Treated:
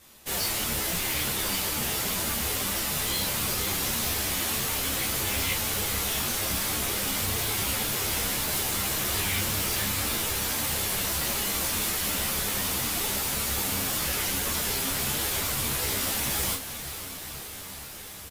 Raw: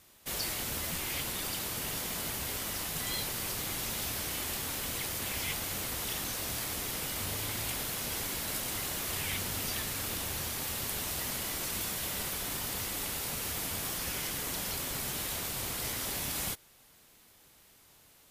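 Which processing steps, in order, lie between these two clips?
in parallel at -8 dB: wrapped overs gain 28.5 dB; on the sum: doubler 30 ms -3.5 dB; diffused feedback echo 0.485 s, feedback 79%, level -12 dB; ensemble effect; gain +6 dB

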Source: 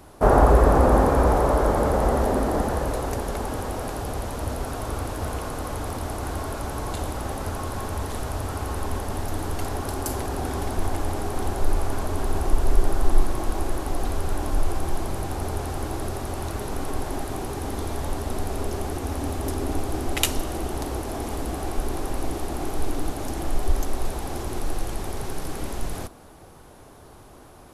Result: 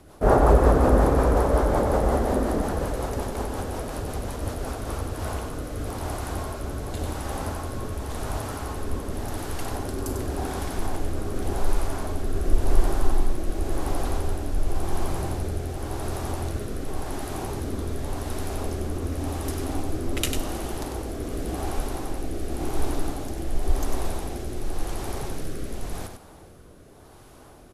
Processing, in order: rotary speaker horn 5.5 Hz, later 0.9 Hz, at 4.54; echo 97 ms -6.5 dB

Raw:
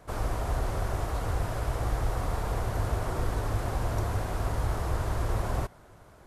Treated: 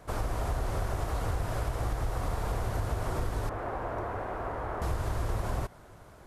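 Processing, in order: 3.49–4.82 three-band isolator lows -13 dB, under 280 Hz, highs -21 dB, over 2200 Hz; compressor, threshold -28 dBFS, peak gain reduction 6.5 dB; gain +1.5 dB

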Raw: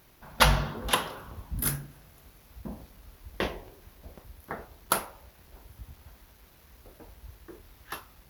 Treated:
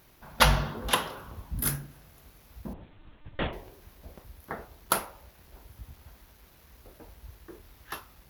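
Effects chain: 2.73–3.53 monotone LPC vocoder at 8 kHz 300 Hz

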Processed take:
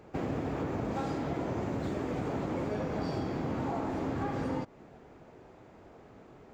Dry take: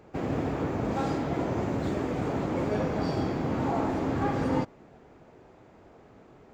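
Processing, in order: compressor, threshold -30 dBFS, peak gain reduction 8.5 dB

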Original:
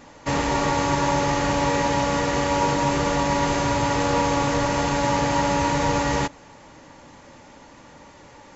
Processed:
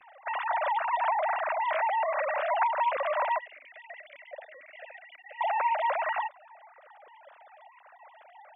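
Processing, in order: sine-wave speech; 3.38–5.41 vowel sweep e-i 2 Hz; gain -6.5 dB

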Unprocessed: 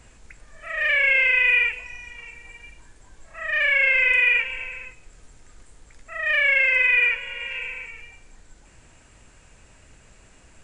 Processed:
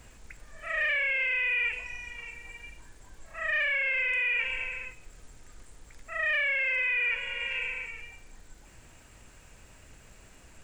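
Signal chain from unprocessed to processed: limiter -19 dBFS, peak gain reduction 10.5 dB; sample gate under -59 dBFS; gain -1.5 dB

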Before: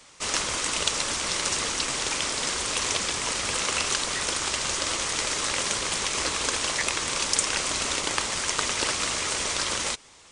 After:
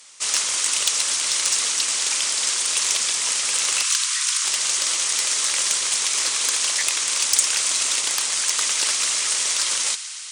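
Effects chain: 3.83–4.45 steep high-pass 970 Hz 72 dB/oct; thin delay 0.12 s, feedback 85%, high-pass 1400 Hz, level -15.5 dB; sine folder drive 7 dB, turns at -3 dBFS; tilt +4 dB/oct; gain -14 dB

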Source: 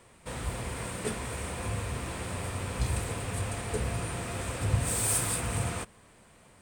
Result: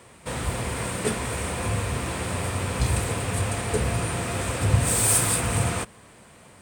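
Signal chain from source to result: HPF 59 Hz; gain +7.5 dB

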